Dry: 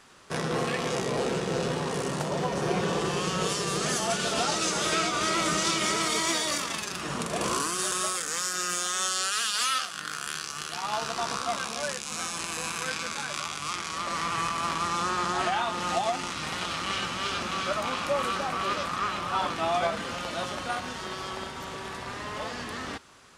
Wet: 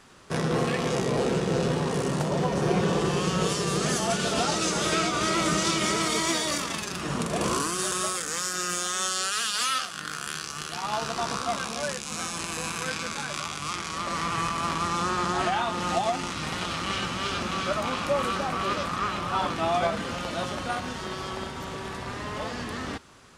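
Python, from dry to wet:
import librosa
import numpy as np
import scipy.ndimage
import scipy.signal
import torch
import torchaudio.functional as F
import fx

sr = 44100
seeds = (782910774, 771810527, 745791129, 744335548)

y = fx.low_shelf(x, sr, hz=390.0, db=6.5)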